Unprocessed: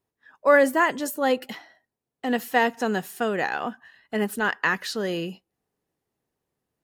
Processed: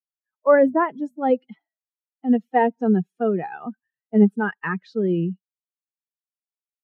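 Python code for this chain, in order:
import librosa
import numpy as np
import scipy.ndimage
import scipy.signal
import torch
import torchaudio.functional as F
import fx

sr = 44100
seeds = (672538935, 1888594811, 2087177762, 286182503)

p1 = fx.bin_expand(x, sr, power=2.0)
p2 = scipy.signal.sosfilt(scipy.signal.butter(2, 1100.0, 'lowpass', fs=sr, output='sos'), p1)
p3 = fx.low_shelf_res(p2, sr, hz=120.0, db=-14.0, q=3.0)
p4 = fx.rider(p3, sr, range_db=10, speed_s=2.0)
p5 = p3 + F.gain(torch.from_numpy(p4), -0.5).numpy()
y = fx.hum_notches(p5, sr, base_hz=60, count=4, at=(0.67, 1.3))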